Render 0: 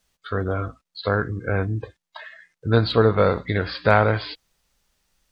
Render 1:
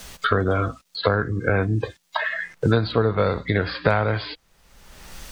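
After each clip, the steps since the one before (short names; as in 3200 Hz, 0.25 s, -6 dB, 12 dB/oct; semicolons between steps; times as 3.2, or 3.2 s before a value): three-band squash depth 100%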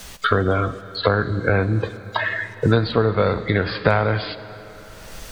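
digital reverb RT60 4.2 s, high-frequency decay 0.85×, pre-delay 10 ms, DRR 13.5 dB; gain +2 dB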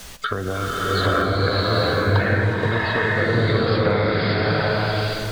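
compressor 3:1, threshold -24 dBFS, peak gain reduction 10 dB; stuck buffer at 1.11/2.05, samples 512, times 8; bloom reverb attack 0.82 s, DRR -7 dB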